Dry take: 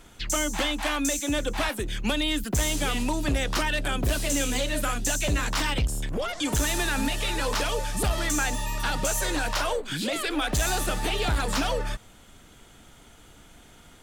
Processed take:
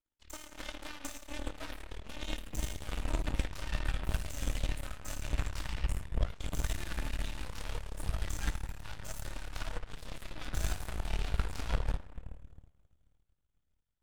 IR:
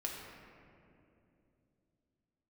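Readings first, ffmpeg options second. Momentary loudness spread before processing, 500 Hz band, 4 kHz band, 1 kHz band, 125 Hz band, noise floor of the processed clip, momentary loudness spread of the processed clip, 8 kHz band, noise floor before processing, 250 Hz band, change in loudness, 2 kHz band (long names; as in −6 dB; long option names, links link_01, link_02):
4 LU, −17.0 dB, −16.5 dB, −16.5 dB, −7.0 dB, −77 dBFS, 10 LU, −18.0 dB, −52 dBFS, −16.5 dB, −13.0 dB, −16.0 dB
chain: -filter_complex "[1:a]atrim=start_sample=2205[link_01];[0:a][link_01]afir=irnorm=-1:irlink=0,aeval=exprs='0.282*(cos(1*acos(clip(val(0)/0.282,-1,1)))-cos(1*PI/2))+0.0891*(cos(3*acos(clip(val(0)/0.282,-1,1)))-cos(3*PI/2))+0.0126*(cos(4*acos(clip(val(0)/0.282,-1,1)))-cos(4*PI/2))+0.00178*(cos(7*acos(clip(val(0)/0.282,-1,1)))-cos(7*PI/2))+0.002*(cos(8*acos(clip(val(0)/0.282,-1,1)))-cos(8*PI/2))':channel_layout=same,asubboost=boost=4.5:cutoff=130,volume=-6.5dB"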